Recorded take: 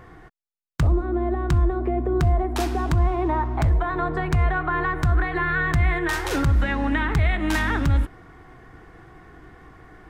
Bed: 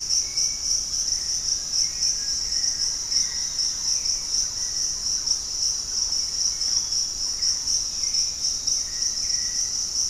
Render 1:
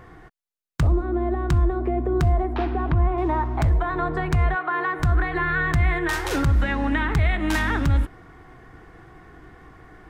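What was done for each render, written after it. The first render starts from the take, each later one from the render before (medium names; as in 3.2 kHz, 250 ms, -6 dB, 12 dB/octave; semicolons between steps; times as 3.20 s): 2.54–3.18 s: Bessel low-pass 2.3 kHz, order 6; 4.54–4.99 s: high-pass 500 Hz -> 240 Hz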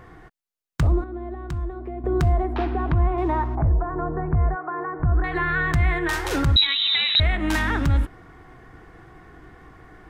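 1.04–2.04 s: gain -9 dB; 3.55–5.24 s: Gaussian low-pass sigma 6.5 samples; 6.56–7.20 s: frequency inversion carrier 3.9 kHz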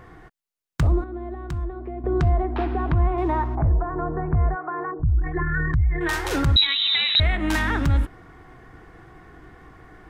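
1.64–2.70 s: distance through air 98 m; 4.91–6.01 s: resonances exaggerated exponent 2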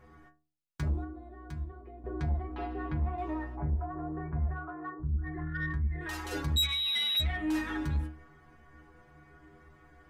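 inharmonic resonator 73 Hz, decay 0.51 s, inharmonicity 0.008; saturation -23.5 dBFS, distortion -13 dB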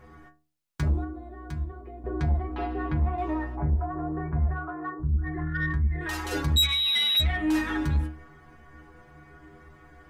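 trim +6 dB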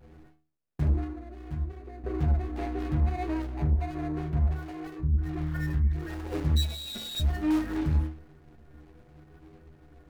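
median filter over 41 samples; vibrato 0.66 Hz 28 cents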